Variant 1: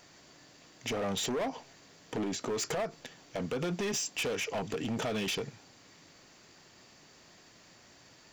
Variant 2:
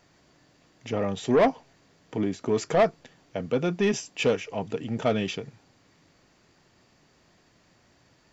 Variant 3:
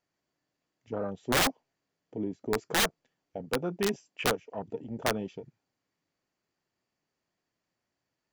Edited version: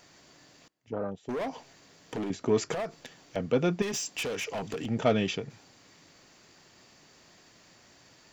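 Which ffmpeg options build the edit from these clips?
-filter_complex "[1:a]asplit=3[a][b][c];[0:a]asplit=5[d][e][f][g][h];[d]atrim=end=0.682[i];[2:a]atrim=start=0.678:end=1.292[j];[e]atrim=start=1.288:end=2.302[k];[a]atrim=start=2.298:end=2.722[l];[f]atrim=start=2.718:end=3.362[m];[b]atrim=start=3.358:end=3.822[n];[g]atrim=start=3.818:end=4.862[o];[c]atrim=start=4.858:end=5.502[p];[h]atrim=start=5.498[q];[i][j]acrossfade=d=0.004:c1=hsin:c2=hsin[r];[r][k]acrossfade=d=0.004:c1=hsin:c2=hsin[s];[s][l]acrossfade=d=0.004:c1=hsin:c2=hsin[t];[t][m]acrossfade=d=0.004:c1=hsin:c2=hsin[u];[u][n]acrossfade=d=0.004:c1=hsin:c2=hsin[v];[v][o]acrossfade=d=0.004:c1=hsin:c2=hsin[w];[w][p]acrossfade=d=0.004:c1=hsin:c2=hsin[x];[x][q]acrossfade=d=0.004:c1=hsin:c2=hsin"

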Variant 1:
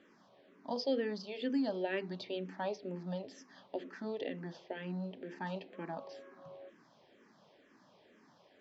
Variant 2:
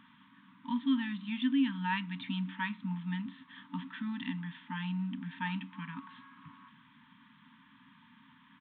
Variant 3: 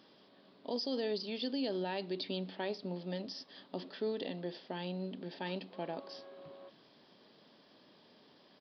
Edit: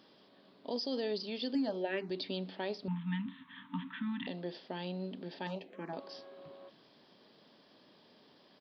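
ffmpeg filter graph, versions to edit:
-filter_complex "[0:a]asplit=2[a][b];[2:a]asplit=4[c][d][e][f];[c]atrim=end=1.552[g];[a]atrim=start=1.548:end=2.102[h];[d]atrim=start=2.098:end=2.882[i];[1:a]atrim=start=2.878:end=4.272[j];[e]atrim=start=4.268:end=5.472[k];[b]atrim=start=5.468:end=5.932[l];[f]atrim=start=5.928[m];[g][h]acrossfade=d=0.004:c1=hsin:c2=hsin[n];[n][i]acrossfade=d=0.004:c1=hsin:c2=hsin[o];[o][j]acrossfade=d=0.004:c1=hsin:c2=hsin[p];[p][k]acrossfade=d=0.004:c1=hsin:c2=hsin[q];[q][l]acrossfade=d=0.004:c1=hsin:c2=hsin[r];[r][m]acrossfade=d=0.004:c1=hsin:c2=hsin"

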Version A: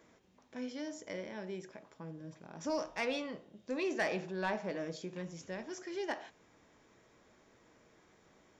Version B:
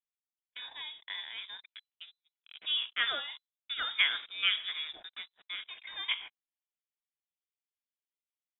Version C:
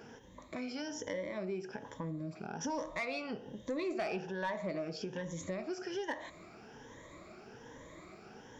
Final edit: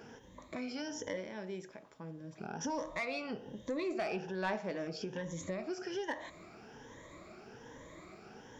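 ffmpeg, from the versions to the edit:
-filter_complex "[0:a]asplit=2[a][b];[2:a]asplit=3[c][d][e];[c]atrim=end=1.172[f];[a]atrim=start=1.168:end=2.382[g];[d]atrim=start=2.378:end=4.352[h];[b]atrim=start=4.348:end=4.872[i];[e]atrim=start=4.868[j];[f][g]acrossfade=d=0.004:c1=hsin:c2=hsin[k];[k][h]acrossfade=d=0.004:c1=hsin:c2=hsin[l];[l][i]acrossfade=d=0.004:c1=hsin:c2=hsin[m];[m][j]acrossfade=d=0.004:c1=hsin:c2=hsin"

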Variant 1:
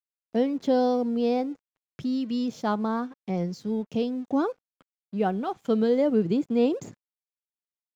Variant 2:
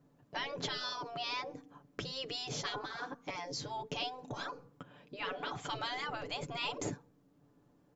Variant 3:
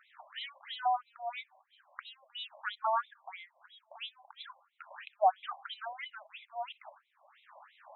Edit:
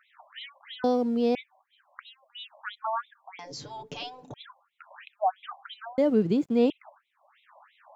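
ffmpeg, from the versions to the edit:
-filter_complex "[0:a]asplit=2[a][b];[2:a]asplit=4[c][d][e][f];[c]atrim=end=0.842[g];[a]atrim=start=0.838:end=1.352[h];[d]atrim=start=1.348:end=3.392[i];[1:a]atrim=start=3.388:end=4.342[j];[e]atrim=start=4.338:end=5.982[k];[b]atrim=start=5.978:end=6.702[l];[f]atrim=start=6.698[m];[g][h]acrossfade=d=0.004:c1=hsin:c2=hsin[n];[n][i]acrossfade=d=0.004:c1=hsin:c2=hsin[o];[o][j]acrossfade=d=0.004:c1=hsin:c2=hsin[p];[p][k]acrossfade=d=0.004:c1=hsin:c2=hsin[q];[q][l]acrossfade=d=0.004:c1=hsin:c2=hsin[r];[r][m]acrossfade=d=0.004:c1=hsin:c2=hsin"

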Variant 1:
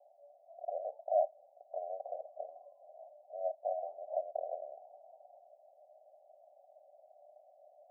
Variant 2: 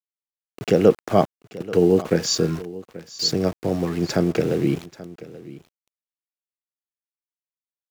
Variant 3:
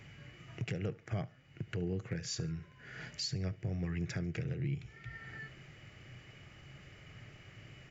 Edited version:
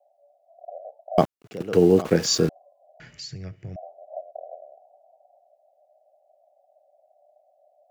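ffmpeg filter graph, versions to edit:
-filter_complex "[0:a]asplit=3[a][b][c];[a]atrim=end=1.182[d];[1:a]atrim=start=1.178:end=2.492[e];[b]atrim=start=2.488:end=3.002[f];[2:a]atrim=start=2.998:end=3.762[g];[c]atrim=start=3.758[h];[d][e]acrossfade=d=0.004:c1=hsin:c2=hsin[i];[i][f]acrossfade=d=0.004:c1=hsin:c2=hsin[j];[j][g]acrossfade=d=0.004:c1=hsin:c2=hsin[k];[k][h]acrossfade=d=0.004:c1=hsin:c2=hsin"

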